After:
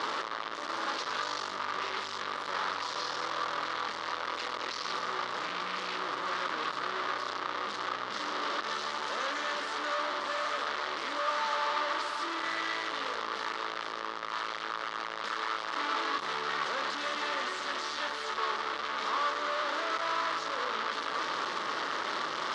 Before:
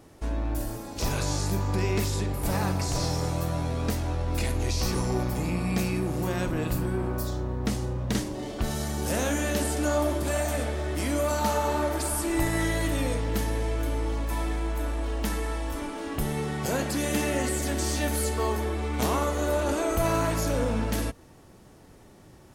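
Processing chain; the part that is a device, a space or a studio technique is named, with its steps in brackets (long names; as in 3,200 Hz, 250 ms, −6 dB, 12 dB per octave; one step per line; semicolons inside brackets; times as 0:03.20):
home computer beeper (sign of each sample alone; loudspeaker in its box 730–4,400 Hz, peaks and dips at 730 Hz −8 dB, 1,200 Hz +8 dB, 2,500 Hz −7 dB)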